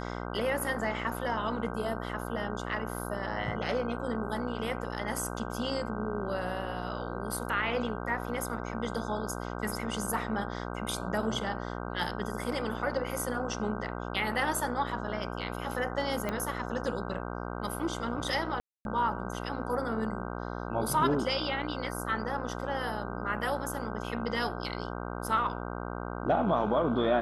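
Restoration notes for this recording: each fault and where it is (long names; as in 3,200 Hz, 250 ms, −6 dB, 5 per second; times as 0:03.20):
mains buzz 60 Hz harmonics 26 −37 dBFS
0:16.29: click −18 dBFS
0:18.60–0:18.85: drop-out 251 ms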